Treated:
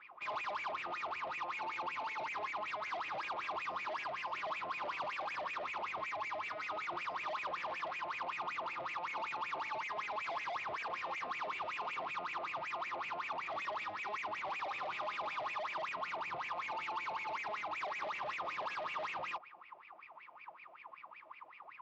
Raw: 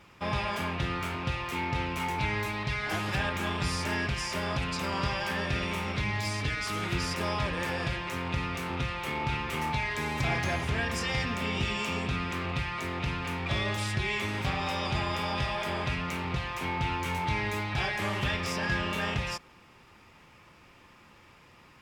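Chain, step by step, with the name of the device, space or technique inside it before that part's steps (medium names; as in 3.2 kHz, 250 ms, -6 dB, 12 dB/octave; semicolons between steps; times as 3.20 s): wah-wah guitar rig (wah-wah 5.3 Hz 630–2500 Hz, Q 16; valve stage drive 55 dB, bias 0.25; cabinet simulation 100–4500 Hz, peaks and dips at 240 Hz -4 dB, 330 Hz +6 dB, 1.1 kHz +7 dB, 1.7 kHz -6 dB); trim +15.5 dB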